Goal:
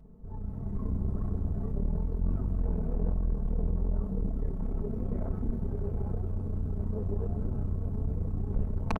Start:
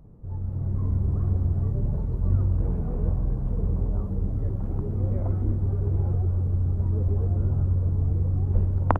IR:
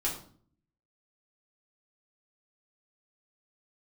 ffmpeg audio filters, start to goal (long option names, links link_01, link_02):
-af "aecho=1:1:4.6:0.85,aeval=exprs='(tanh(10*val(0)+0.55)-tanh(0.55))/10':channel_layout=same,volume=-2.5dB"